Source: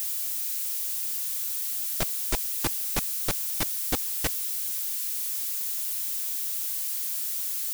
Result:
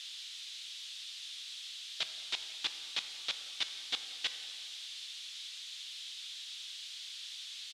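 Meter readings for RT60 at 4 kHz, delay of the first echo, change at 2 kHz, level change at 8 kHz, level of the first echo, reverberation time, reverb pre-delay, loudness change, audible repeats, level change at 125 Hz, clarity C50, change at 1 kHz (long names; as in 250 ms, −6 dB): 1.6 s, 177 ms, −4.5 dB, −17.5 dB, −22.0 dB, 2.5 s, 8 ms, −13.0 dB, 1, below −30 dB, 10.0 dB, −14.0 dB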